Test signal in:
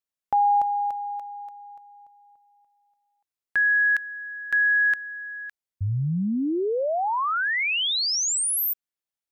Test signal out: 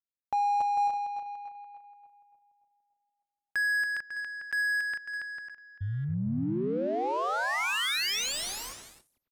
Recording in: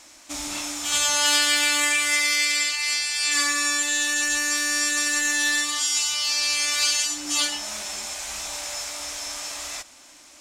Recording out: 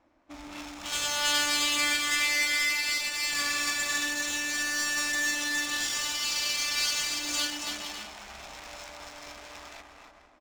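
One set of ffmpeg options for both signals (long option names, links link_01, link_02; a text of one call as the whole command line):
ffmpeg -i in.wav -af "aecho=1:1:280|448|548.8|609.3|645.6:0.631|0.398|0.251|0.158|0.1,adynamicsmooth=sensitivity=4.5:basefreq=870,volume=-7dB" out.wav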